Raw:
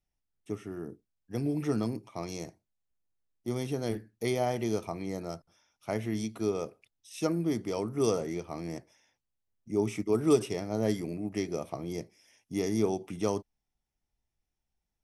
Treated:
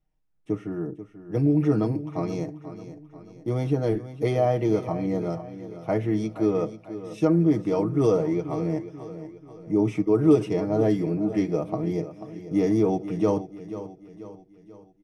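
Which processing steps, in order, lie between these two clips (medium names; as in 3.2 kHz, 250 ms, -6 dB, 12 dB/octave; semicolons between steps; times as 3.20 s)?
low-pass 1 kHz 6 dB/octave; comb 6.4 ms; in parallel at +3 dB: peak limiter -21 dBFS, peak gain reduction 8.5 dB; on the sum: feedback delay 487 ms, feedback 47%, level -13 dB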